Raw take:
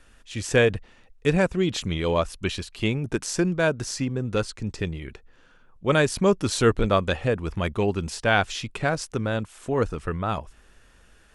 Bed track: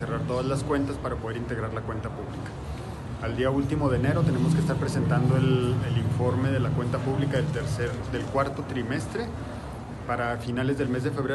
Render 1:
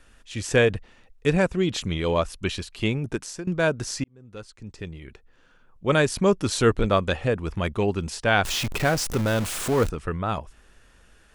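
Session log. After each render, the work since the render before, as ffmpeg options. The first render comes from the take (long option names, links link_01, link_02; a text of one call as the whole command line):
ffmpeg -i in.wav -filter_complex "[0:a]asettb=1/sr,asplit=3[link_01][link_02][link_03];[link_01]atrim=end=8.444[link_04];[link_02]atrim=start=8.44:end=9.9,asetpts=PTS-STARTPTS,afade=type=in:duration=0.004:curve=qsin,afade=type=out:start_time=1.456:duration=0.004:curve=qsin,aeval=exprs='val(0)+0.5*0.0531*sgn(val(0))':channel_layout=same[link_05];[link_03]atrim=start=9.896[link_06];[link_04][link_05]acrossfade=duration=0.004:curve1=hsin:curve2=qsin[link_07];[link_07][link_06]acrossfade=duration=0.004:curve1=qsin:curve2=hsin,asplit=3[link_08][link_09][link_10];[link_08]atrim=end=3.47,asetpts=PTS-STARTPTS,afade=type=out:start_time=3.03:duration=0.44:silence=0.125893[link_11];[link_09]atrim=start=3.47:end=4.04,asetpts=PTS-STARTPTS,afade=type=in:duration=0.004:curve=hsin:silence=0.125893,afade=type=out:start_time=0.566:duration=0.004:curve=hsin[link_12];[link_10]atrim=start=4.04,asetpts=PTS-STARTPTS,afade=type=in:duration=1.88[link_13];[link_11][link_12][link_13]concat=n=3:v=0:a=1" out.wav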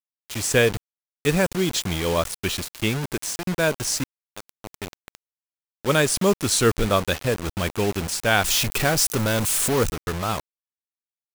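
ffmpeg -i in.wav -af "crystalizer=i=2:c=0,acrusher=bits=4:mix=0:aa=0.000001" out.wav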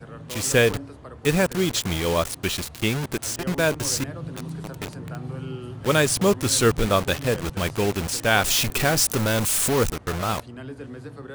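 ffmpeg -i in.wav -i bed.wav -filter_complex "[1:a]volume=-11dB[link_01];[0:a][link_01]amix=inputs=2:normalize=0" out.wav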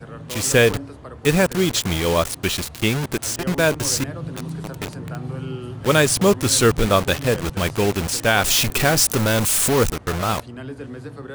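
ffmpeg -i in.wav -af "volume=3.5dB,alimiter=limit=-3dB:level=0:latency=1" out.wav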